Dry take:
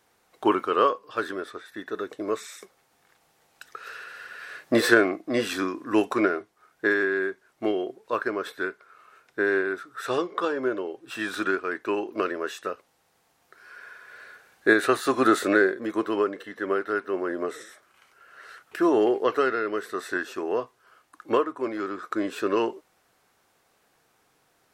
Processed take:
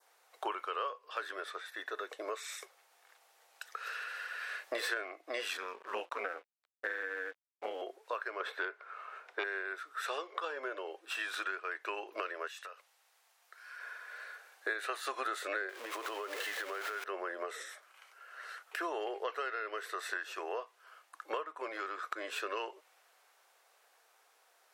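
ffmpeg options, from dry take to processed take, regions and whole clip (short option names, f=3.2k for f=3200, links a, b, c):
-filter_complex "[0:a]asettb=1/sr,asplit=3[a][b][c];[a]atrim=end=5.574[d];[b]atrim=start=5.57:end=7.82,asetpts=PTS-STARTPTS,afade=t=in:d=0.004:c=qsin,afade=t=out:st=2.246:d=0.004:c=qsin,highshelf=f=4.4k:g=-10,aeval=exprs='val(0)*sin(2*PI*90*n/s)':c=same,aeval=exprs='sgn(val(0))*max(abs(val(0))-0.00266,0)':c=same[e];[c]atrim=start=7.816[f];[d][e]acrossfade=d=0.004:c1=hsin:c2=qsin[g];[g][f]acrossfade=d=0.004:c1=qsin:c2=hsin,asettb=1/sr,asplit=3[h][i][j];[h]atrim=end=8.404[k];[i]atrim=start=8.4:end=9.44,asetpts=PTS-STARTPTS,afade=t=in:d=0.004:c=qsin,afade=t=out:st=1.036:d=0.004:c=qsin,lowpass=f=1.3k:p=1,aeval=exprs='0.2*sin(PI/2*2*val(0)/0.2)':c=same[l];[j]atrim=start=9.436[m];[k][l]acrossfade=d=0.004:c1=hsin:c2=qsin[n];[n][m]acrossfade=d=0.004:c1=qsin:c2=hsin,asettb=1/sr,asplit=3[o][p][q];[o]atrim=end=12.474[r];[p]atrim=start=12.47:end=13.8,asetpts=PTS-STARTPTS,afade=t=in:d=0.004:c=qsin,afade=t=out:st=1.326:d=0.004:c=qsin,highpass=f=1.1k:p=1,acompressor=threshold=-42dB:ratio=6:attack=3.2:release=140:knee=1:detection=peak[s];[q]atrim=start=13.796[t];[r][s]acrossfade=d=0.004:c1=hsin:c2=qsin[u];[u][t]acrossfade=d=0.004:c1=qsin:c2=hsin,asettb=1/sr,asplit=3[v][w][x];[v]atrim=end=15.694[y];[w]atrim=start=15.69:end=17.04,asetpts=PTS-STARTPTS,afade=t=in:d=0.004:c=qsin,afade=t=out:st=1.346:d=0.004:c=qsin,aeval=exprs='val(0)+0.5*0.0282*sgn(val(0))':c=same,acompressor=threshold=-28dB:ratio=5:attack=3.2:release=140:knee=1:detection=peak[z];[x]atrim=start=17.036[aa];[y][z]acrossfade=d=0.004:c1=hsin:c2=qsin[ab];[ab][aa]acrossfade=d=0.004:c1=qsin:c2=hsin,highpass=f=510:w=0.5412,highpass=f=510:w=1.3066,adynamicequalizer=threshold=0.00631:dfrequency=2600:dqfactor=1.3:tfrequency=2600:tqfactor=1.3:attack=5:release=100:ratio=0.375:range=2.5:mode=boostabove:tftype=bell,acompressor=threshold=-35dB:ratio=4,volume=-1dB"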